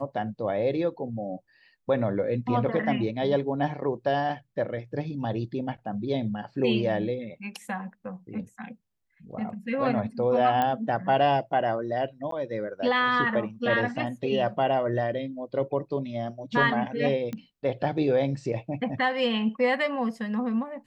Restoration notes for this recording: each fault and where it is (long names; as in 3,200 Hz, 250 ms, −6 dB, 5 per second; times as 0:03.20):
0:10.62: click −14 dBFS
0:12.31–0:12.32: drop-out
0:17.33: click −21 dBFS